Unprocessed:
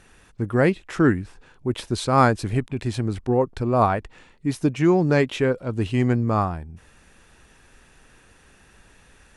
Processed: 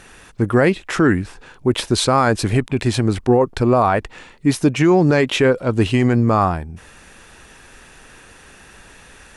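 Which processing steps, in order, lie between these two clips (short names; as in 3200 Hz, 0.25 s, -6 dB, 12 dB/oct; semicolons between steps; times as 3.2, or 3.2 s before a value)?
low shelf 250 Hz -5.5 dB; maximiser +15.5 dB; gain -4.5 dB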